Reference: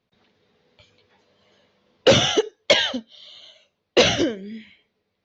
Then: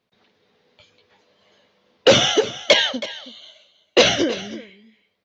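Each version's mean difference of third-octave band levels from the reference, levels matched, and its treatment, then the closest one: 3.5 dB: bass shelf 150 Hz -9 dB; on a send: delay 322 ms -15.5 dB; on the sum: trim +2.5 dB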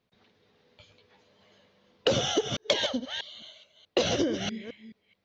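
6.5 dB: chunks repeated in reverse 214 ms, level -10 dB; dynamic bell 2.1 kHz, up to -7 dB, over -34 dBFS, Q 1.2; compression 12:1, threshold -20 dBFS, peak gain reduction 10 dB; trim -1.5 dB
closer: first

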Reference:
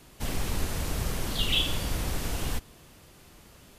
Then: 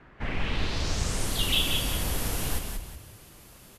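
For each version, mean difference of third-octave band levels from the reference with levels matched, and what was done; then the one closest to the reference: 4.0 dB: low-pass sweep 1.7 kHz -> 12 kHz, 0.14–1.37 s; on a send: frequency-shifting echo 183 ms, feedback 36%, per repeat -38 Hz, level -5 dB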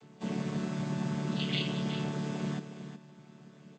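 10.0 dB: vocoder on a held chord major triad, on D3; delay 367 ms -10 dB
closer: first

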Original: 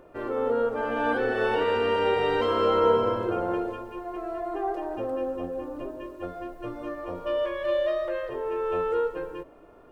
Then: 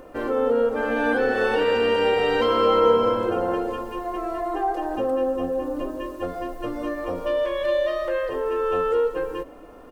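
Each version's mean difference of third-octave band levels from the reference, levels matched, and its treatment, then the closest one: 2.5 dB: tone controls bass 0 dB, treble +5 dB; comb 3.9 ms, depth 46%; in parallel at +2 dB: compression, threshold -32 dBFS, peak gain reduction 16 dB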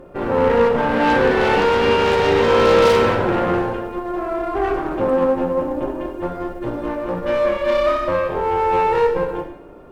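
4.5 dB: bass shelf 420 Hz +8.5 dB; Chebyshev shaper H 6 -13 dB, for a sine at -10.5 dBFS; in parallel at -4 dB: hard clipper -24 dBFS, distortion -5 dB; on the sum: two-slope reverb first 0.72 s, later 2.3 s, from -25 dB, DRR 2 dB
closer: first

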